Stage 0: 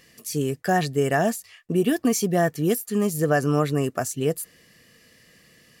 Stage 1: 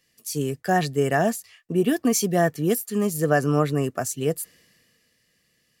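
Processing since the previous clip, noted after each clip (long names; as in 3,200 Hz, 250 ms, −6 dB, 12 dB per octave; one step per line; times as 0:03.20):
multiband upward and downward expander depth 40%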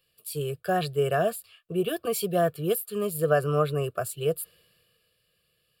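phaser with its sweep stopped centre 1,300 Hz, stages 8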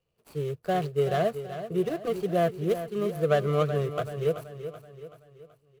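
running median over 25 samples
on a send: repeating echo 380 ms, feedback 47%, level −11 dB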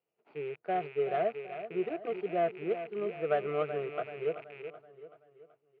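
loose part that buzzes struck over −43 dBFS, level −32 dBFS
loudspeaker in its box 410–2,200 Hz, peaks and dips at 530 Hz −8 dB, 1,100 Hz −10 dB, 1,700 Hz −7 dB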